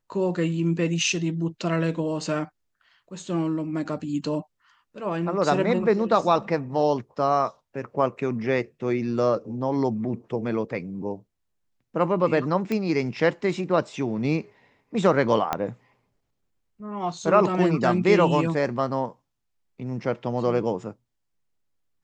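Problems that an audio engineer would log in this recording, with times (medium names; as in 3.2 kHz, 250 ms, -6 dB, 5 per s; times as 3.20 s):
12.72 s: pop -15 dBFS
15.53 s: pop -10 dBFS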